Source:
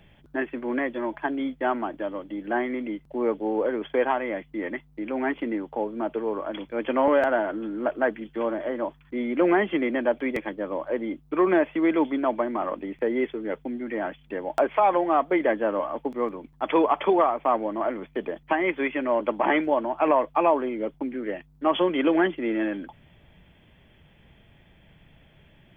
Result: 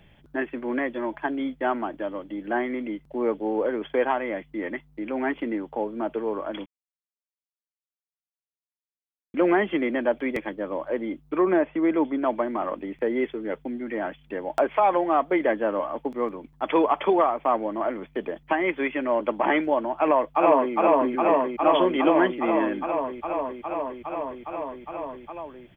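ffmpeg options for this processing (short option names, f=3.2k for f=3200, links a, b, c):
-filter_complex "[0:a]asettb=1/sr,asplit=3[a][b][c];[a]atrim=end=11.384[d];[b]atrim=start=11.38:end=12.22,asetpts=PTS-STARTPTS,afade=t=in:d=0.004:c=qsin,afade=t=out:st=0.836:d=0.004:c=qsin,lowpass=f=1.6k:p=1[e];[c]atrim=start=12.216[f];[d][e]acrossfade=d=0.004:c1=hsin:c2=qsin[g];[g][f]acrossfade=d=0.004:c1=qsin:c2=hsin,asplit=2[h][i];[i]afade=t=in:st=19.96:d=0.01,afade=t=out:st=20.74:d=0.01,aecho=0:1:410|820|1230|1640|2050|2460|2870|3280|3690|4100|4510|4920:0.891251|0.757563|0.643929|0.547339|0.465239|0.395453|0.336135|0.285715|0.242857|0.206429|0.175464|0.149145[j];[h][j]amix=inputs=2:normalize=0,asplit=3[k][l][m];[k]atrim=end=6.66,asetpts=PTS-STARTPTS,afade=t=out:st=6.656:d=0.004:c=hsin[n];[l]atrim=start=6.66:end=9.34,asetpts=PTS-STARTPTS,volume=0[o];[m]atrim=start=9.34,asetpts=PTS-STARTPTS,afade=t=in:d=0.004:c=hsin[p];[n][o][p]concat=n=3:v=0:a=1"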